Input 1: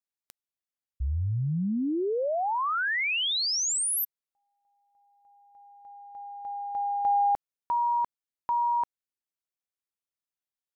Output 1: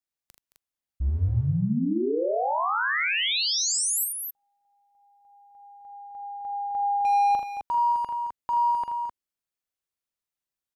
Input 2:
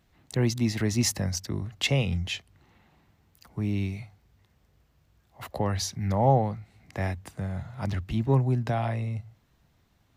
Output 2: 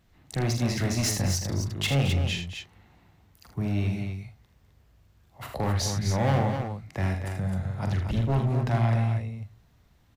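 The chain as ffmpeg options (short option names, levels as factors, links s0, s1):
-af "lowshelf=f=100:g=5,volume=14.1,asoftclip=hard,volume=0.0708,aecho=1:1:43|79|219|259:0.447|0.398|0.224|0.473"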